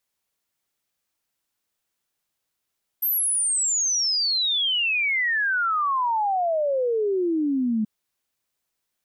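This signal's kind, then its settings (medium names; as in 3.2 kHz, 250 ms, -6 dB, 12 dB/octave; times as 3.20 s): log sweep 13 kHz -> 210 Hz 4.83 s -20 dBFS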